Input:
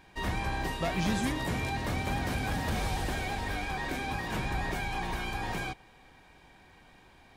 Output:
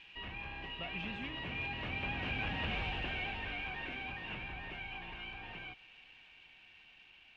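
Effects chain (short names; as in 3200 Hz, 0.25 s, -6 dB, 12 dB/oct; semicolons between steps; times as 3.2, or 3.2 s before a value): switching spikes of -35 dBFS; Doppler pass-by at 2.65, 7 m/s, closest 4 m; compressor 1.5:1, threshold -55 dBFS, peak gain reduction 9.5 dB; ladder low-pass 2900 Hz, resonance 80%; gain +14 dB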